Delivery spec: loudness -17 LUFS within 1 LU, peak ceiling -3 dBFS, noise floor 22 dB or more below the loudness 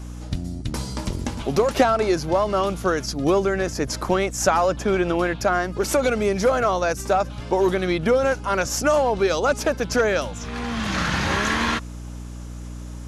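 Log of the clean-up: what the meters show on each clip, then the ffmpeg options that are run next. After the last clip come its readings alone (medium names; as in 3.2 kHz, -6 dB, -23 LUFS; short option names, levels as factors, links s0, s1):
hum 60 Hz; highest harmonic 300 Hz; hum level -32 dBFS; loudness -22.0 LUFS; peak level -7.0 dBFS; loudness target -17.0 LUFS
-> -af "bandreject=f=60:t=h:w=6,bandreject=f=120:t=h:w=6,bandreject=f=180:t=h:w=6,bandreject=f=240:t=h:w=6,bandreject=f=300:t=h:w=6"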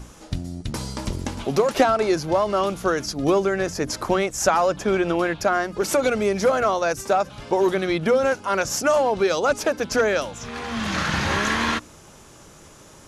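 hum not found; loudness -22.5 LUFS; peak level -6.0 dBFS; loudness target -17.0 LUFS
-> -af "volume=1.88,alimiter=limit=0.708:level=0:latency=1"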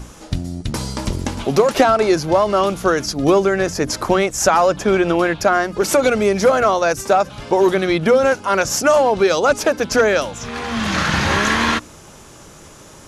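loudness -17.0 LUFS; peak level -3.0 dBFS; noise floor -42 dBFS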